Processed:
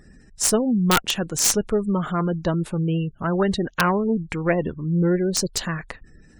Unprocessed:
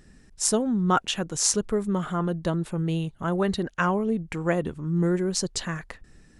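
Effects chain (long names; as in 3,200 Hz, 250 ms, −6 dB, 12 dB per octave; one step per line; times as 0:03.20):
harmonic generator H 2 −6 dB, 3 −40 dB, 6 −39 dB, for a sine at −4 dBFS
gate on every frequency bin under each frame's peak −30 dB strong
wrap-around overflow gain 11.5 dB
level +4.5 dB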